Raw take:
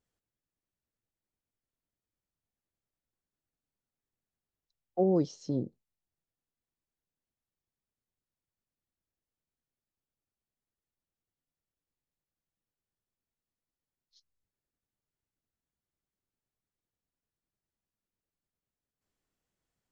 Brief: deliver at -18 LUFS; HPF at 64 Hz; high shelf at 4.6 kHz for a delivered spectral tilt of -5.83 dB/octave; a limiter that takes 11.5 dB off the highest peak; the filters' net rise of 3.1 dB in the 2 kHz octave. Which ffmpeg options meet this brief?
-af "highpass=64,equalizer=f=2000:t=o:g=3.5,highshelf=f=4600:g=4.5,volume=11.2,alimiter=limit=0.473:level=0:latency=1"

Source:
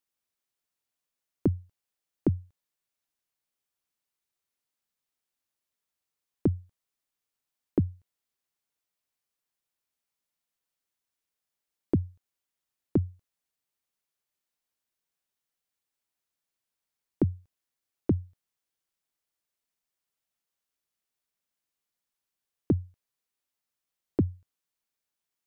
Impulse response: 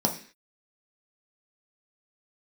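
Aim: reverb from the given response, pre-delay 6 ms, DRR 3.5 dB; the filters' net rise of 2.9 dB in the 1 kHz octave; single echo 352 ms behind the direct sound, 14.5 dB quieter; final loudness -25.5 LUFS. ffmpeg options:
-filter_complex "[0:a]equalizer=f=1000:t=o:g=4,aecho=1:1:352:0.188,asplit=2[s0][s1];[1:a]atrim=start_sample=2205,adelay=6[s2];[s1][s2]afir=irnorm=-1:irlink=0,volume=0.2[s3];[s0][s3]amix=inputs=2:normalize=0,volume=1.19"

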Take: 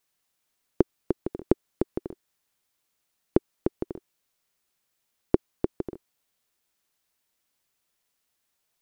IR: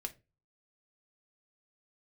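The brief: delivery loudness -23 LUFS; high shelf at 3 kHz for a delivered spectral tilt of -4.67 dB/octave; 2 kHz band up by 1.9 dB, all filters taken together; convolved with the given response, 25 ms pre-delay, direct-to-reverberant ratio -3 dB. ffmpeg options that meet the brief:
-filter_complex "[0:a]equalizer=f=2000:t=o:g=5.5,highshelf=f=3000:g=-9,asplit=2[s0][s1];[1:a]atrim=start_sample=2205,adelay=25[s2];[s1][s2]afir=irnorm=-1:irlink=0,volume=1.68[s3];[s0][s3]amix=inputs=2:normalize=0,volume=1.26"

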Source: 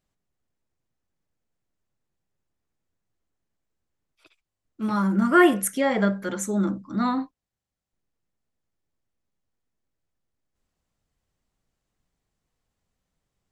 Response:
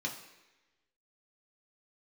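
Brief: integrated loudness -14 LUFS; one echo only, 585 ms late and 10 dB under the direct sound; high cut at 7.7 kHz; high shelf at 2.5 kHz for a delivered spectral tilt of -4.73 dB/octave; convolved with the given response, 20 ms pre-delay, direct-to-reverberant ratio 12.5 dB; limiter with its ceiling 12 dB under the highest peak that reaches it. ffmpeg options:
-filter_complex "[0:a]lowpass=7700,highshelf=f=2500:g=-8,alimiter=limit=0.119:level=0:latency=1,aecho=1:1:585:0.316,asplit=2[s0][s1];[1:a]atrim=start_sample=2205,adelay=20[s2];[s1][s2]afir=irnorm=-1:irlink=0,volume=0.168[s3];[s0][s3]amix=inputs=2:normalize=0,volume=4.73"

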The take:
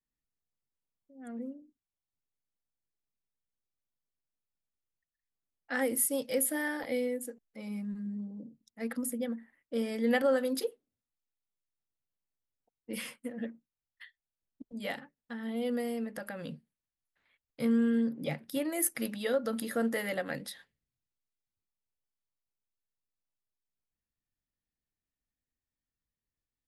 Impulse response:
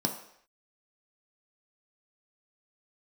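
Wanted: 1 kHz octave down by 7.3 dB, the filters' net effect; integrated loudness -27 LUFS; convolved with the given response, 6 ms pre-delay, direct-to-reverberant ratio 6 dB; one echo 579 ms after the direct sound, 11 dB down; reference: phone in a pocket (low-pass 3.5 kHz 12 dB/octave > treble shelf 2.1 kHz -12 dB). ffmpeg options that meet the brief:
-filter_complex "[0:a]equalizer=f=1000:t=o:g=-8.5,aecho=1:1:579:0.282,asplit=2[s0][s1];[1:a]atrim=start_sample=2205,adelay=6[s2];[s1][s2]afir=irnorm=-1:irlink=0,volume=0.237[s3];[s0][s3]amix=inputs=2:normalize=0,lowpass=3500,highshelf=f=2100:g=-12,volume=1.88"

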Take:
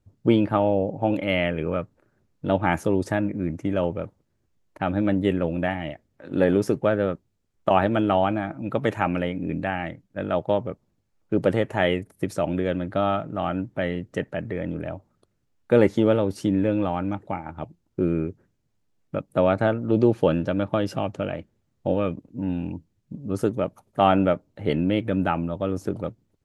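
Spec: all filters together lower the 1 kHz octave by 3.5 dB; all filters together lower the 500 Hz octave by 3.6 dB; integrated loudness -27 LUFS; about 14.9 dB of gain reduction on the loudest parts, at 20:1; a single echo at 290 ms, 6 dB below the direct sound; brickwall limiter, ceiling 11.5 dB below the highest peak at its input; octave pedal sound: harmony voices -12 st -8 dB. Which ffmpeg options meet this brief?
-filter_complex "[0:a]equalizer=f=500:t=o:g=-3.5,equalizer=f=1000:t=o:g=-3.5,acompressor=threshold=0.0355:ratio=20,alimiter=level_in=1.19:limit=0.0631:level=0:latency=1,volume=0.841,aecho=1:1:290:0.501,asplit=2[s0][s1];[s1]asetrate=22050,aresample=44100,atempo=2,volume=0.398[s2];[s0][s2]amix=inputs=2:normalize=0,volume=3.16"

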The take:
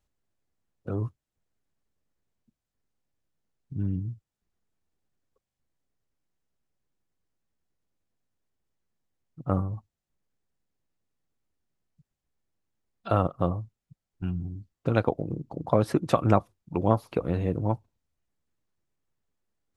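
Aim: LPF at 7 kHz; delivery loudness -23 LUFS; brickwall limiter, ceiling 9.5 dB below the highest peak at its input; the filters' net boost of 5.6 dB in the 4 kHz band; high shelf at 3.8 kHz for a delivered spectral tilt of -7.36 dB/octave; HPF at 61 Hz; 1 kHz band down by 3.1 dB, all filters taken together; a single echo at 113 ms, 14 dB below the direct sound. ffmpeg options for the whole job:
-af "highpass=61,lowpass=7000,equalizer=f=1000:t=o:g=-5,highshelf=f=3800:g=6.5,equalizer=f=4000:t=o:g=3.5,alimiter=limit=0.168:level=0:latency=1,aecho=1:1:113:0.2,volume=2.82"

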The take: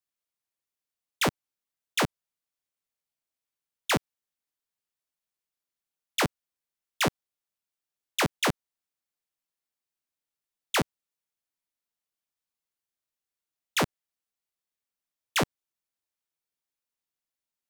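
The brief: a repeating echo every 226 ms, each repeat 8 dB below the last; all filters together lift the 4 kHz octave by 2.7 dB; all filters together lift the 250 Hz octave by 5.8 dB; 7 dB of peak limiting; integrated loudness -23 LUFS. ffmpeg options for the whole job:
-af "equalizer=f=250:t=o:g=7.5,equalizer=f=4000:t=o:g=3.5,alimiter=limit=0.0944:level=0:latency=1,aecho=1:1:226|452|678|904|1130:0.398|0.159|0.0637|0.0255|0.0102,volume=3.16"

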